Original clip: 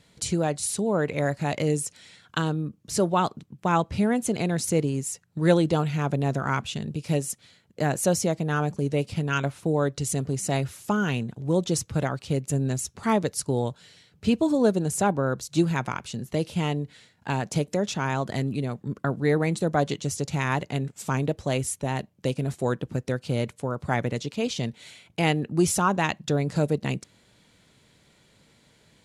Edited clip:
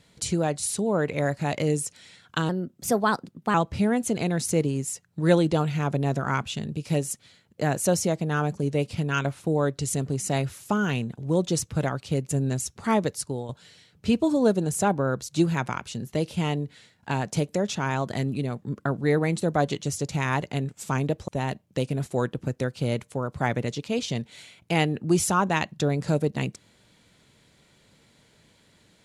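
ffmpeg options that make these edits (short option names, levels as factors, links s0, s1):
-filter_complex "[0:a]asplit=5[s0][s1][s2][s3][s4];[s0]atrim=end=2.494[s5];[s1]atrim=start=2.49:end=3.73,asetpts=PTS-STARTPTS,asetrate=52038,aresample=44100,atrim=end_sample=46342,asetpts=PTS-STARTPTS[s6];[s2]atrim=start=3.726:end=13.68,asetpts=PTS-STARTPTS,afade=t=out:st=9.534:d=0.42:silence=0.266073[s7];[s3]atrim=start=13.68:end=21.472,asetpts=PTS-STARTPTS,afade=t=in:d=0.004:c=hsin:silence=0.266073[s8];[s4]atrim=start=21.758[s9];[s5][s6]acrossfade=d=0.004:c1=hsin:c2=hsin[s10];[s7][s8]concat=n=2:v=0:a=1[s11];[s10][s11]acrossfade=d=0.004:c1=hsin:c2=hsin[s12];[s12][s9]acrossfade=d=0.004:c1=hsin:c2=hsin"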